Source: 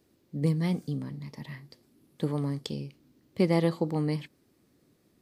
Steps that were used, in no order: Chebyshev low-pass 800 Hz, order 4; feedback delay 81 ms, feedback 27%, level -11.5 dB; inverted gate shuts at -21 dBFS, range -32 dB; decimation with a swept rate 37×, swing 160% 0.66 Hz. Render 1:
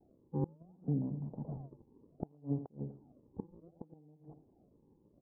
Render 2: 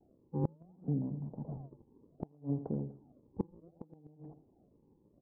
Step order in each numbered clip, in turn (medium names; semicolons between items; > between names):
feedback delay > inverted gate > decimation with a swept rate > Chebyshev low-pass; feedback delay > decimation with a swept rate > Chebyshev low-pass > inverted gate